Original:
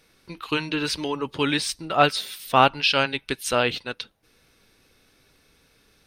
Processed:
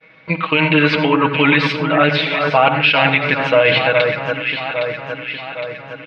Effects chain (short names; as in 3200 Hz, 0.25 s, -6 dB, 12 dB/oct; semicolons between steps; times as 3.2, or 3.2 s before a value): expander -55 dBFS; reverse; compressor 6:1, threshold -27 dBFS, peak gain reduction 15.5 dB; reverse; speaker cabinet 130–2900 Hz, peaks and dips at 350 Hz -10 dB, 600 Hz +7 dB, 2200 Hz +9 dB; comb 6.3 ms, depth 83%; echo with dull and thin repeats by turns 0.406 s, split 1700 Hz, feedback 73%, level -7 dB; on a send at -11 dB: reverb RT60 0.35 s, pre-delay 71 ms; on the sum: maximiser +17.5 dB; gain -1 dB